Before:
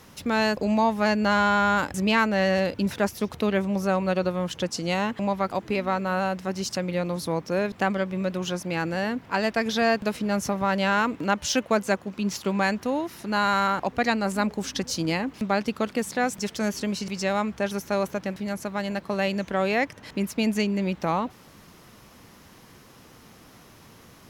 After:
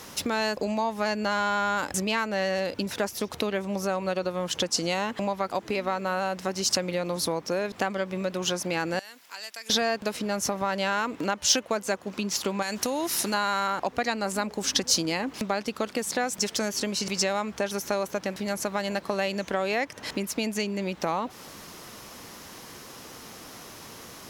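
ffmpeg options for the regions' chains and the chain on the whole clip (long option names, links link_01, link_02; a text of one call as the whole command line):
ffmpeg -i in.wav -filter_complex "[0:a]asettb=1/sr,asplit=3[link_01][link_02][link_03];[link_01]atrim=end=8.994[link_04];[link_02]atrim=start=8.99:end=9.7,asetpts=PTS-STARTPTS,afade=type=in:duration=0.004:curve=qsin,afade=type=out:start_time=0.706:duration=0.004:curve=qsin,aderivative,acompressor=threshold=-49dB:ratio=2:attack=3.2:release=140:knee=1:detection=peak[link_05];[link_03]atrim=start=9.696[link_06];[link_04][link_05]acrossfade=duration=0.004:curve1=hsin:curve2=qsin[link_07];[link_07][link_06]acrossfade=duration=0.004:curve1=qsin:curve2=hsin,asettb=1/sr,asplit=3[link_08][link_09][link_10];[link_08]atrim=end=12.624[link_11];[link_09]atrim=start=12.62:end=13.34,asetpts=PTS-STARTPTS,afade=type=in:duration=0.004:curve=qsin,afade=type=out:start_time=0.716:duration=0.004:curve=qsin,equalizer=frequency=10000:width=0.34:gain=11,acompressor=threshold=-25dB:ratio=6:attack=3.2:release=140:knee=1:detection=peak[link_12];[link_10]atrim=start=13.336[link_13];[link_11][link_12]acrossfade=duration=0.004:curve1=hsin:curve2=qsin[link_14];[link_14][link_13]acrossfade=duration=0.004:curve1=qsin:curve2=hsin,highshelf=frequency=5100:gain=-12,acompressor=threshold=-31dB:ratio=6,bass=frequency=250:gain=-8,treble=frequency=4000:gain=13,volume=7.5dB" out.wav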